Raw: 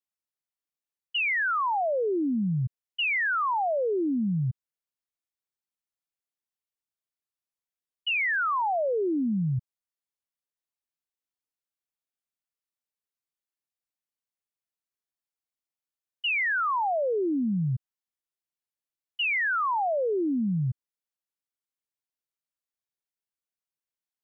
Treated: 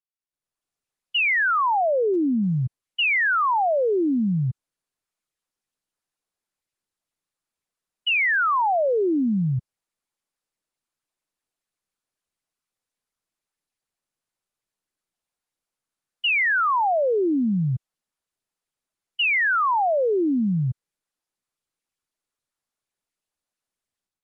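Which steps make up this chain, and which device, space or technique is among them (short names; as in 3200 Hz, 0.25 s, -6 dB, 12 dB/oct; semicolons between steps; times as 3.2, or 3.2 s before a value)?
video call (HPF 100 Hz 6 dB/oct; AGC gain up to 14 dB; gain -8.5 dB; Opus 32 kbps 48000 Hz)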